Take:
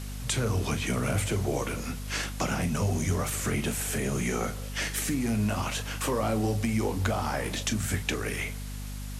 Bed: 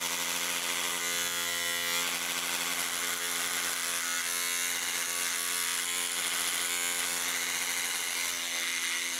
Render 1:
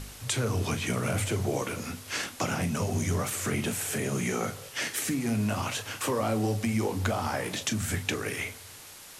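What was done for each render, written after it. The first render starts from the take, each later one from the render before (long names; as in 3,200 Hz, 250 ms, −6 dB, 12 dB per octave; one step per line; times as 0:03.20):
hum removal 50 Hz, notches 5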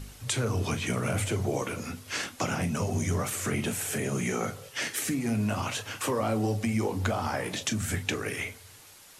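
broadband denoise 6 dB, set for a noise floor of −47 dBFS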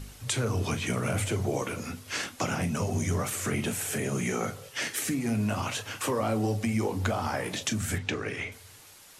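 0:07.98–0:08.52: high-frequency loss of the air 91 metres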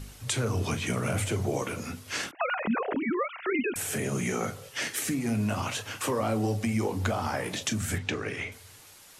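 0:02.31–0:03.76: three sine waves on the formant tracks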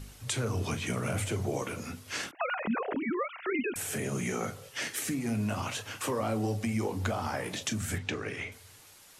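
level −3 dB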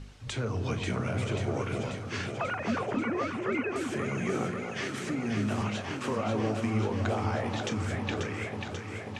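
high-frequency loss of the air 110 metres
delay that swaps between a low-pass and a high-pass 269 ms, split 1,100 Hz, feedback 84%, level −4 dB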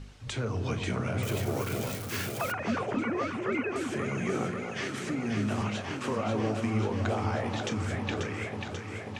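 0:01.23–0:02.52: spike at every zero crossing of −29.5 dBFS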